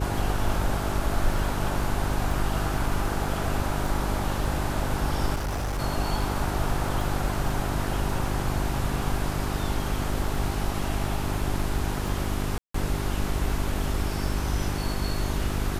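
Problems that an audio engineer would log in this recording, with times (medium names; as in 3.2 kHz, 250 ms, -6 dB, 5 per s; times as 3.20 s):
crackle 12 per s -31 dBFS
hum 50 Hz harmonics 8 -30 dBFS
5.35–5.80 s: clipped -25.5 dBFS
12.58–12.74 s: dropout 164 ms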